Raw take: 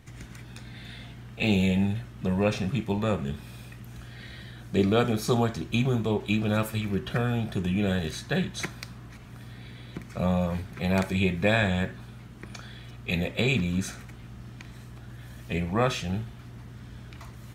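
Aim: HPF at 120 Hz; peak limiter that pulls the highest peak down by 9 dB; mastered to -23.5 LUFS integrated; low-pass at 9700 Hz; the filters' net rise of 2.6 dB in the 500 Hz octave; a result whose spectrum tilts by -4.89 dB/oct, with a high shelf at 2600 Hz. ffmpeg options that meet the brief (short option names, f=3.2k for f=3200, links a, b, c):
-af "highpass=120,lowpass=9.7k,equalizer=f=500:t=o:g=3,highshelf=f=2.6k:g=4.5,volume=5.5dB,alimiter=limit=-11dB:level=0:latency=1"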